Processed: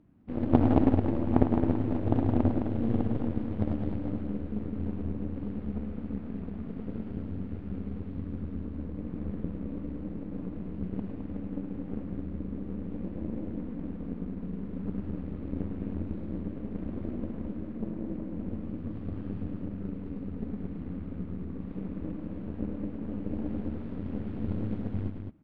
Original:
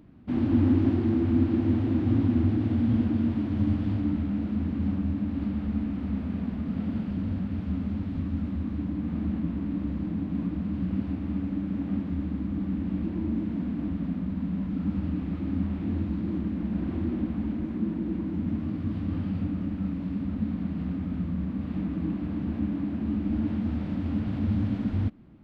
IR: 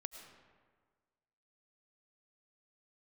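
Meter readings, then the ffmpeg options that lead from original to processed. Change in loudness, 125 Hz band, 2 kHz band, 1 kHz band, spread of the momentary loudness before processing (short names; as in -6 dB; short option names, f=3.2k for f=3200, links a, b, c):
-5.0 dB, -5.0 dB, n/a, +3.5 dB, 7 LU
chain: -af "aeval=exprs='0.282*(cos(1*acos(clip(val(0)/0.282,-1,1)))-cos(1*PI/2))+0.0501*(cos(2*acos(clip(val(0)/0.282,-1,1)))-cos(2*PI/2))+0.112*(cos(3*acos(clip(val(0)/0.282,-1,1)))-cos(3*PI/2))+0.0282*(cos(4*acos(clip(val(0)/0.282,-1,1)))-cos(4*PI/2))+0.02*(cos(5*acos(clip(val(0)/0.282,-1,1)))-cos(5*PI/2))':c=same,aemphasis=mode=reproduction:type=75kf,aecho=1:1:105|212.8:0.398|0.501,volume=6.5dB"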